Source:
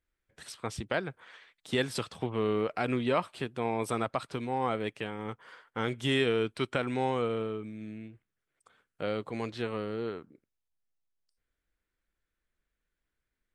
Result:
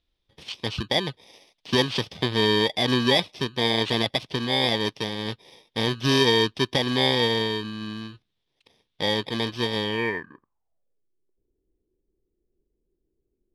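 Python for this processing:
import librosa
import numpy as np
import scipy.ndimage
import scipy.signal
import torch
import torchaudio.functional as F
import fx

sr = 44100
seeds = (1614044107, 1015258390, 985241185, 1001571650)

y = fx.bit_reversed(x, sr, seeds[0], block=32)
y = fx.filter_sweep_lowpass(y, sr, from_hz=3600.0, to_hz=380.0, start_s=9.81, end_s=11.06, q=6.0)
y = y * 10.0 ** (8.0 / 20.0)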